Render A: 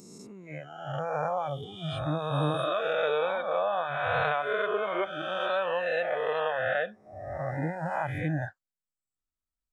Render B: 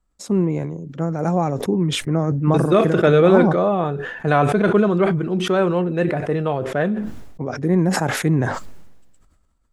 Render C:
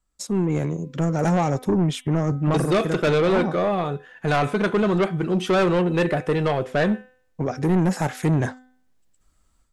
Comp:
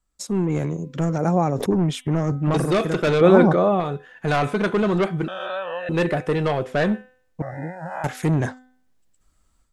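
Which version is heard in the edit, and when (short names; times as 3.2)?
C
1.18–1.71 from B
3.21–3.8 from B
5.28–5.89 from A
7.42–8.04 from A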